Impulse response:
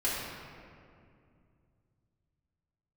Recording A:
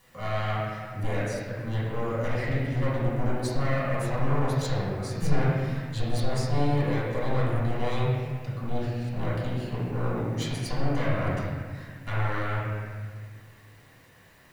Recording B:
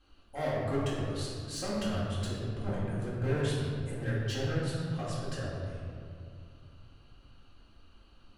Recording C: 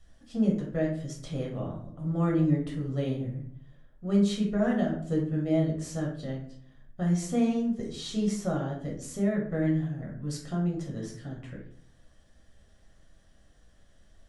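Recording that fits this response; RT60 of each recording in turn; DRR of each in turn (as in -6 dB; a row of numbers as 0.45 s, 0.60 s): B; 1.7 s, 2.4 s, 0.60 s; -10.5 dB, -9.5 dB, -2.5 dB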